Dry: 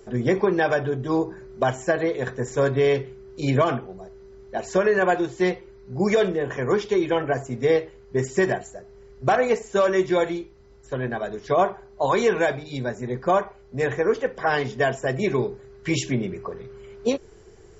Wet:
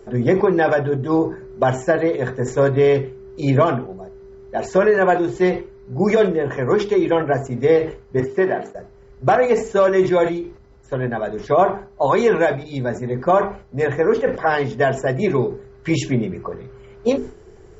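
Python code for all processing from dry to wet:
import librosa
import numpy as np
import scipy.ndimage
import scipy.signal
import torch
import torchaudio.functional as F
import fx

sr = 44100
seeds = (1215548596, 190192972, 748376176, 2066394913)

y = fx.chain(x, sr, fx.law_mismatch(coded='A'),
    fx.highpass(hz=240.0, slope=12),
    fx.air_absorb(metres=210.0), at=(8.2, 8.75))
y = fx.high_shelf(y, sr, hz=2300.0, db=-9.0)
y = fx.hum_notches(y, sr, base_hz=50, count=9)
y = fx.sustainer(y, sr, db_per_s=130.0)
y = y * 10.0 ** (5.5 / 20.0)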